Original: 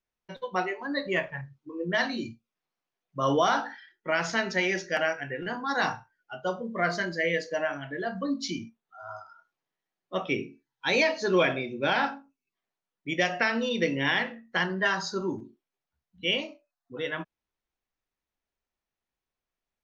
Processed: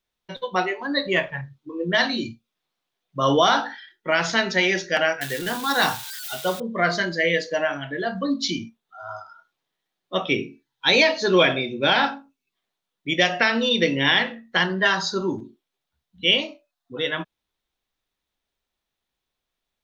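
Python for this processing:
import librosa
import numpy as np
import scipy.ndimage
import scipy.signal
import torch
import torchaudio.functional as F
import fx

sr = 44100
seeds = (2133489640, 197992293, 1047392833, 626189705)

y = fx.crossing_spikes(x, sr, level_db=-29.0, at=(5.21, 6.6))
y = fx.peak_eq(y, sr, hz=3600.0, db=8.5, octaves=0.5)
y = y * librosa.db_to_amplitude(5.5)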